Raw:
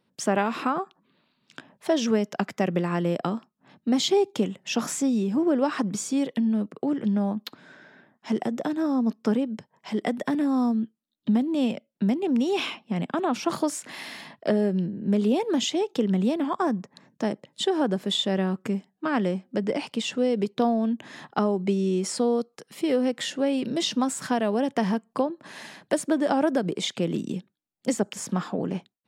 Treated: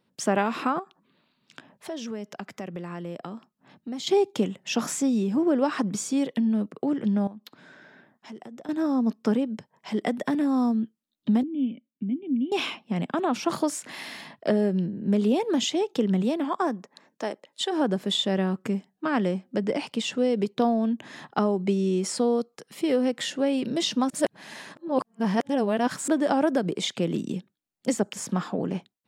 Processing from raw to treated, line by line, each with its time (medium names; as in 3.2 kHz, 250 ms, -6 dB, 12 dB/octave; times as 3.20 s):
0.79–4.07 s: compression 2:1, threshold -40 dBFS
7.27–8.69 s: compression 2.5:1, threshold -46 dBFS
11.43–12.52 s: cascade formant filter i
16.22–17.71 s: high-pass 200 Hz -> 550 Hz
24.10–26.08 s: reverse